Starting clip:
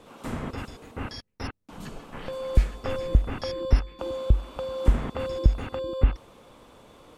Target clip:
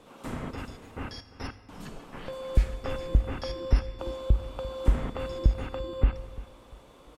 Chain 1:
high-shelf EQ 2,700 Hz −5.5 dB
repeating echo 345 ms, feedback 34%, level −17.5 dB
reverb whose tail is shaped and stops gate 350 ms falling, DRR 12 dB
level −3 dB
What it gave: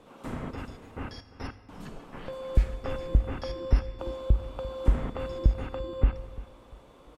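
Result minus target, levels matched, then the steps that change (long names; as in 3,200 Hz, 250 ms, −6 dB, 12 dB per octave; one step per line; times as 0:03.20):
4,000 Hz band −3.5 dB
remove: high-shelf EQ 2,700 Hz −5.5 dB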